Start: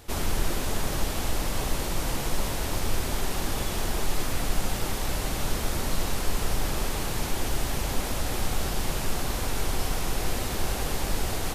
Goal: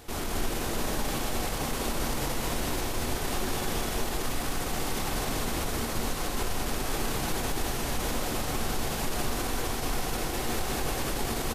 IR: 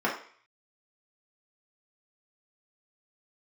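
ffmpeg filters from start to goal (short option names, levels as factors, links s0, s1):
-filter_complex "[0:a]alimiter=limit=0.0708:level=0:latency=1:release=35,aecho=1:1:122.4|204.1:0.316|0.794,asplit=2[s0][s1];[1:a]atrim=start_sample=2205,lowshelf=f=240:g=11.5[s2];[s1][s2]afir=irnorm=-1:irlink=0,volume=0.075[s3];[s0][s3]amix=inputs=2:normalize=0"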